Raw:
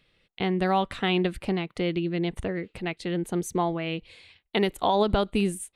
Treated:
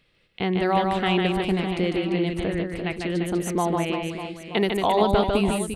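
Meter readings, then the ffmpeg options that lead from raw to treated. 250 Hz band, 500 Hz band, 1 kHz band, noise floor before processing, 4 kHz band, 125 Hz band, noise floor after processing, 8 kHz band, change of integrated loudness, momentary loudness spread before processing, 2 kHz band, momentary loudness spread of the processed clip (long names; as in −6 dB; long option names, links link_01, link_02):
+3.5 dB, +4.0 dB, +3.5 dB, −75 dBFS, +2.5 dB, +3.0 dB, −64 dBFS, +3.0 dB, +3.5 dB, 8 LU, +3.5 dB, 8 LU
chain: -af "equalizer=frequency=3600:width_type=o:width=0.21:gain=-3,aecho=1:1:150|345|598.5|928|1356:0.631|0.398|0.251|0.158|0.1,volume=1.5dB"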